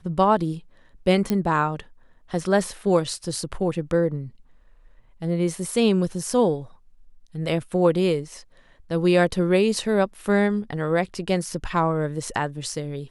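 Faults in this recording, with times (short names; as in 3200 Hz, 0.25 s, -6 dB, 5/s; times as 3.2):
1.3 pop -10 dBFS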